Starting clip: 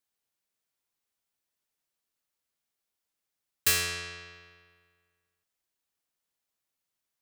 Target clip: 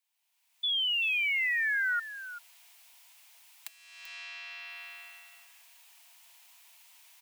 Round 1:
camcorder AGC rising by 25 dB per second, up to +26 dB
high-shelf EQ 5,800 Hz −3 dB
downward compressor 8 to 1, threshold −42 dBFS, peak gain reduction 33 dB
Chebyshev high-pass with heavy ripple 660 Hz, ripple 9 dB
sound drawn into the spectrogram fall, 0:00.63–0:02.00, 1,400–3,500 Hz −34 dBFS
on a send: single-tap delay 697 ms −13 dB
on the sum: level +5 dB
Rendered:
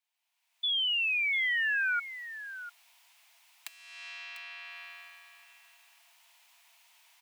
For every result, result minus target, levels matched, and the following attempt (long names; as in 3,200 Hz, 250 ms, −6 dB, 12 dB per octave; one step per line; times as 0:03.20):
echo 309 ms late; 8,000 Hz band −3.0 dB
camcorder AGC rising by 25 dB per second, up to +26 dB
high-shelf EQ 5,800 Hz −3 dB
downward compressor 8 to 1, threshold −42 dBFS, peak gain reduction 33 dB
Chebyshev high-pass with heavy ripple 660 Hz, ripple 9 dB
sound drawn into the spectrogram fall, 0:00.63–0:02.00, 1,400–3,500 Hz −34 dBFS
on a send: single-tap delay 388 ms −13 dB
on the sum: level +5 dB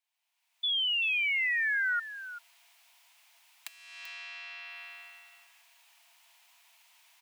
8,000 Hz band −3.5 dB
camcorder AGC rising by 25 dB per second, up to +26 dB
high-shelf EQ 5,800 Hz +5.5 dB
downward compressor 8 to 1, threshold −42 dBFS, peak gain reduction 38.5 dB
Chebyshev high-pass with heavy ripple 660 Hz, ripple 9 dB
sound drawn into the spectrogram fall, 0:00.63–0:02.00, 1,400–3,500 Hz −34 dBFS
on a send: single-tap delay 388 ms −13 dB
on the sum: level +5 dB